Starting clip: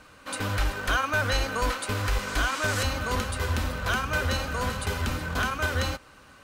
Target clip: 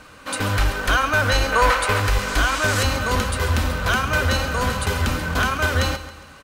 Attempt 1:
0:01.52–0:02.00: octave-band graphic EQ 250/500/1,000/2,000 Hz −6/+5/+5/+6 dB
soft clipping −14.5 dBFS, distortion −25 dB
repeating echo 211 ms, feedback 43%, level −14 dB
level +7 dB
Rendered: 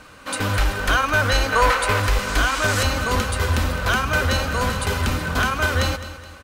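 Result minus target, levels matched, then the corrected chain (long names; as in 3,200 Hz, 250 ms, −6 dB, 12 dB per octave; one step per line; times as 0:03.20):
echo 74 ms late
0:01.52–0:02.00: octave-band graphic EQ 250/500/1,000/2,000 Hz −6/+5/+5/+6 dB
soft clipping −14.5 dBFS, distortion −25 dB
repeating echo 137 ms, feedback 43%, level −14 dB
level +7 dB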